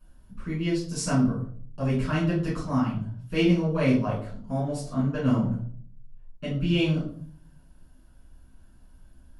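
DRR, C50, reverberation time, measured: −9.5 dB, 5.0 dB, 0.50 s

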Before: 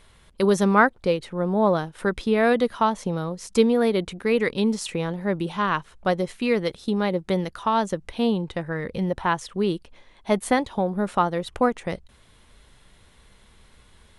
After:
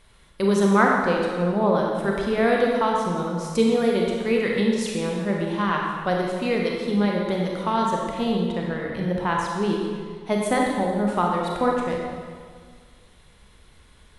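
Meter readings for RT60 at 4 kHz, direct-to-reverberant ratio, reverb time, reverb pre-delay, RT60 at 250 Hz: 1.5 s, −1.5 dB, 1.8 s, 26 ms, 1.9 s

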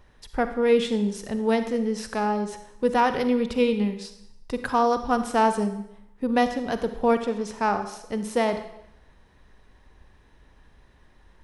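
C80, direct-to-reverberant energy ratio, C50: 12.5 dB, 8.5 dB, 9.5 dB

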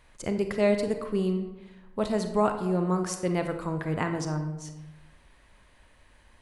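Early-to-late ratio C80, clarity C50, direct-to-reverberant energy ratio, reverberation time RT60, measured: 10.5 dB, 8.0 dB, 6.0 dB, 1.0 s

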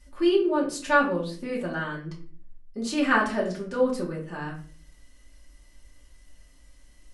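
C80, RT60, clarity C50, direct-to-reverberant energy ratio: 12.5 dB, 0.45 s, 8.0 dB, −4.5 dB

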